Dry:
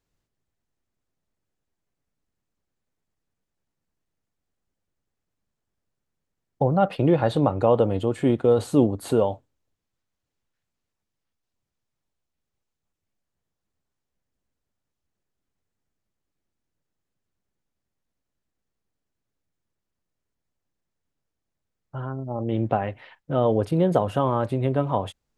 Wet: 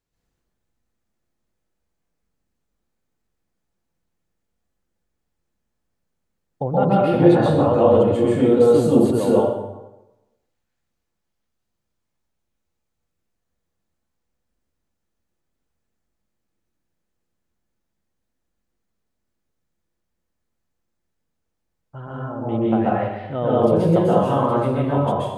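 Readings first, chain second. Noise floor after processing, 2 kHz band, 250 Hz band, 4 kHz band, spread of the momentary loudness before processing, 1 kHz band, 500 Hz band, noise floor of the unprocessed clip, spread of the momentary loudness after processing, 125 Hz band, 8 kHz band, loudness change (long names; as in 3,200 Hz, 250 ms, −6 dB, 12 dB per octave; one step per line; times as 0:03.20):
−77 dBFS, +4.5 dB, +6.0 dB, +3.0 dB, 11 LU, +4.5 dB, +6.0 dB, −83 dBFS, 13 LU, +3.0 dB, can't be measured, +5.5 dB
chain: dense smooth reverb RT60 1 s, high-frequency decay 0.65×, pre-delay 115 ms, DRR −7 dB
level −3.5 dB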